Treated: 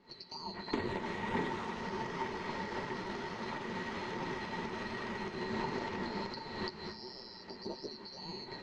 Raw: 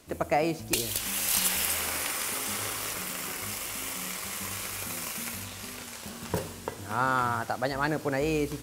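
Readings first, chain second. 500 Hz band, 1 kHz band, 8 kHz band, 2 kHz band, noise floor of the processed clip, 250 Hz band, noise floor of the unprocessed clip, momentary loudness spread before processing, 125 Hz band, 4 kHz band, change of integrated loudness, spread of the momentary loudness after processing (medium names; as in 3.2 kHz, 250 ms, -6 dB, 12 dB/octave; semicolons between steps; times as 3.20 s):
-7.5 dB, -7.0 dB, -29.0 dB, -8.0 dB, -51 dBFS, -4.5 dB, -43 dBFS, 11 LU, -8.0 dB, -9.5 dB, -10.0 dB, 8 LU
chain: split-band scrambler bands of 4 kHz; recorder AGC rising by 65 dB/s; de-hum 53.52 Hz, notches 5; flange 1.4 Hz, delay 6.5 ms, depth 6.4 ms, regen -35%; tape spacing loss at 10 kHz 45 dB; small resonant body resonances 210/370/900/1900 Hz, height 15 dB, ringing for 50 ms; loudspeaker Doppler distortion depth 0.1 ms; trim +1 dB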